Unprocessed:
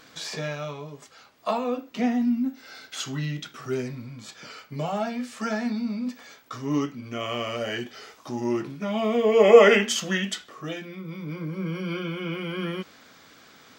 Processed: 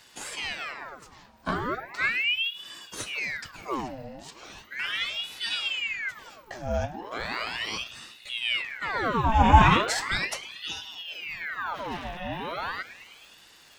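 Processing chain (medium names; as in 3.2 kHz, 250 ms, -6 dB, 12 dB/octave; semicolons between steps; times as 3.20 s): 11.73–12.17 s: comb filter that takes the minimum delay 9.4 ms; tape echo 105 ms, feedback 85%, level -14.5 dB, low-pass 1.8 kHz; ring modulator with a swept carrier 1.8 kHz, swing 80%, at 0.37 Hz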